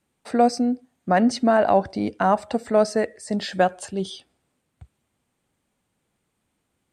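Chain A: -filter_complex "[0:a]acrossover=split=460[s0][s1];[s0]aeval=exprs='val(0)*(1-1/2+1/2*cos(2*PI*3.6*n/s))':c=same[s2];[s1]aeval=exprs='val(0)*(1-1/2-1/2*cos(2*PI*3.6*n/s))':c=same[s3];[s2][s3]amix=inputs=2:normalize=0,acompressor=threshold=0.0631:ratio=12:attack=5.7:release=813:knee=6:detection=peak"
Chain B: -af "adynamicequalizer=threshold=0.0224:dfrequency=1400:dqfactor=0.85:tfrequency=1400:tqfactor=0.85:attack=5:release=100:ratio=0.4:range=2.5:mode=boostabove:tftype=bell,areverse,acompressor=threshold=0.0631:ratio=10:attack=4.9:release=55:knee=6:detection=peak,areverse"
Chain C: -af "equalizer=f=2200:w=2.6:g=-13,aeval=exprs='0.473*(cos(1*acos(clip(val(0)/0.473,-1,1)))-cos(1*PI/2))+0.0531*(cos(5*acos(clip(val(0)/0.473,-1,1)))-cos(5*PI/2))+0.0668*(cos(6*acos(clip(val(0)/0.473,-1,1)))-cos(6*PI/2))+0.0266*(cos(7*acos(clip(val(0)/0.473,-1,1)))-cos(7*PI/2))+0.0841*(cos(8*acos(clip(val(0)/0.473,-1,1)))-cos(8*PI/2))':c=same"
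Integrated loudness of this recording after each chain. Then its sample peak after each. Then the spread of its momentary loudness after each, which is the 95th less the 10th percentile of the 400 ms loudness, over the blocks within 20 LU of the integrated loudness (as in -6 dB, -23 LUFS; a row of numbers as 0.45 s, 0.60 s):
-34.5 LUFS, -30.0 LUFS, -21.0 LUFS; -18.0 dBFS, -15.5 dBFS, -4.5 dBFS; 7 LU, 6 LU, 12 LU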